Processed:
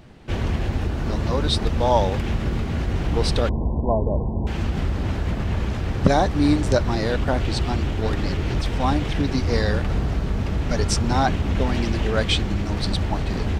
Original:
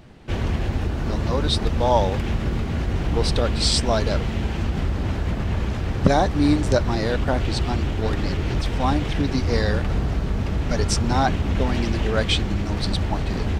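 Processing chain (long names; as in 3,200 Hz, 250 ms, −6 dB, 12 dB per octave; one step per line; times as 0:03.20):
0:03.49–0:04.47: linear-phase brick-wall low-pass 1,100 Hz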